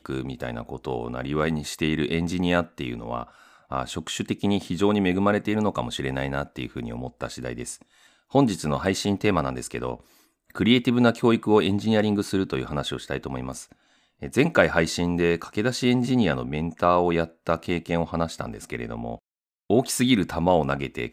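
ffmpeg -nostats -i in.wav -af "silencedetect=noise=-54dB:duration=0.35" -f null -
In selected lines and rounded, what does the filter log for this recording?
silence_start: 19.19
silence_end: 19.70 | silence_duration: 0.51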